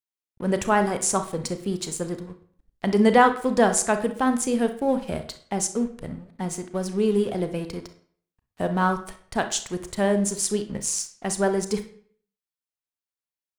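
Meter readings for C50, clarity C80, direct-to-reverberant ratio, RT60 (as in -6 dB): 10.5 dB, 15.5 dB, 8.0 dB, 0.55 s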